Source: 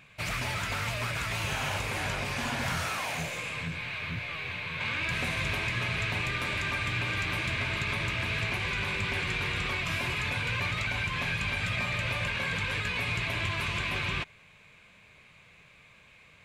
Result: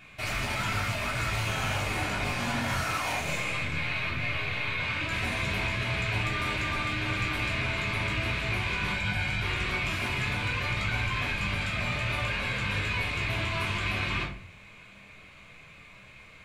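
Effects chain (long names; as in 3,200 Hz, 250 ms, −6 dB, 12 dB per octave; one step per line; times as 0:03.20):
0:08.92–0:09.42: comb filter 1.3 ms, depth 69%
brickwall limiter −27.5 dBFS, peak gain reduction 9 dB
rectangular room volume 350 cubic metres, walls furnished, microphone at 3.3 metres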